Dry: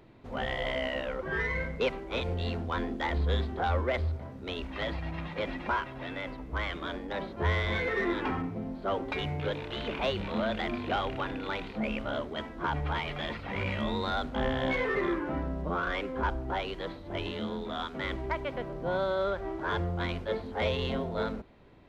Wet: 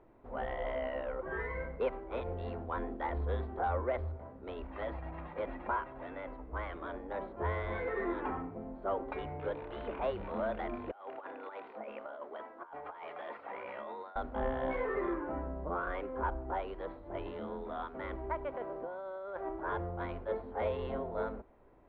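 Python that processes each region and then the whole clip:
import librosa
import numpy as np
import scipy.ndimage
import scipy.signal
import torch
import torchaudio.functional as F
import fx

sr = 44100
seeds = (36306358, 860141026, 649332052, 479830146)

y = fx.chain(x, sr, fx.bessel_highpass(hz=590.0, order=2),
    fx.peak_eq(hz=3300.0, db=-3.5, octaves=2.2),
    fx.over_compress(threshold_db=-39.0, ratio=-0.5), at=(10.91, 14.16))
y = fx.chain(y, sr, fx.highpass(hz=350.0, slope=6),
    fx.over_compress(threshold_db=-37.0, ratio=-1.0), at=(18.54, 19.49))
y = scipy.signal.sosfilt(scipy.signal.butter(2, 1100.0, 'lowpass', fs=sr, output='sos'), y)
y = fx.peak_eq(y, sr, hz=140.0, db=-13.0, octaves=2.1)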